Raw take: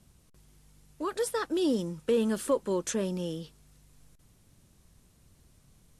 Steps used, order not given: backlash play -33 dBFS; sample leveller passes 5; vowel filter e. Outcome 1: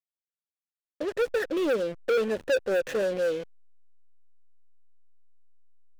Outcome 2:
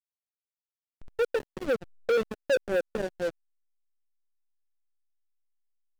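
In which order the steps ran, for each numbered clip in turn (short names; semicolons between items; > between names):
vowel filter > sample leveller > backlash; vowel filter > backlash > sample leveller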